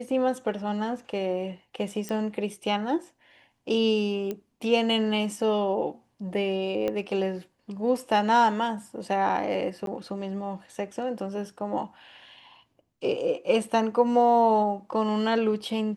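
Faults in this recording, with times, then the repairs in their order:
0:02.09: click −19 dBFS
0:04.31: click −19 dBFS
0:06.88: click −17 dBFS
0:09.86–0:09.87: drop-out 12 ms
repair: click removal
repair the gap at 0:09.86, 12 ms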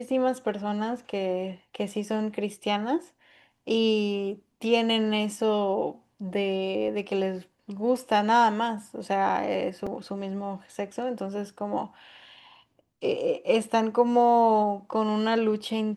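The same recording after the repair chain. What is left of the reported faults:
0:04.31: click
0:06.88: click

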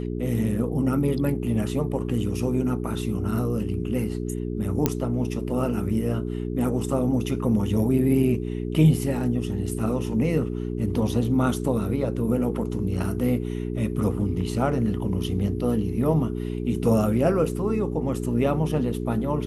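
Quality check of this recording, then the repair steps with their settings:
mains hum 60 Hz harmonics 7 −29 dBFS
0:04.86: click −6 dBFS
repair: click removal
hum removal 60 Hz, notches 7

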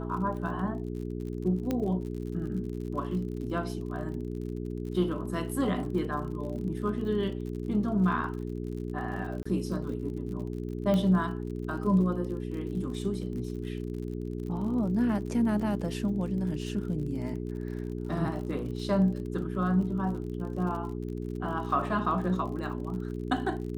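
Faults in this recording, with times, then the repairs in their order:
surface crackle 52 per second −39 dBFS
mains hum 60 Hz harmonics 7 −35 dBFS
0:01.71: click −17 dBFS
0:09.43–0:09.46: drop-out 25 ms
0:10.94: click −18 dBFS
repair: click removal
hum removal 60 Hz, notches 7
repair the gap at 0:09.43, 25 ms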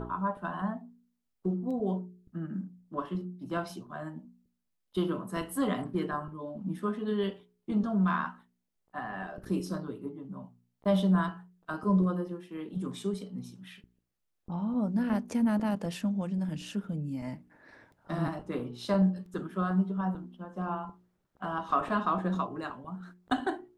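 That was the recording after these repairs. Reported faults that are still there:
0:01.71: click

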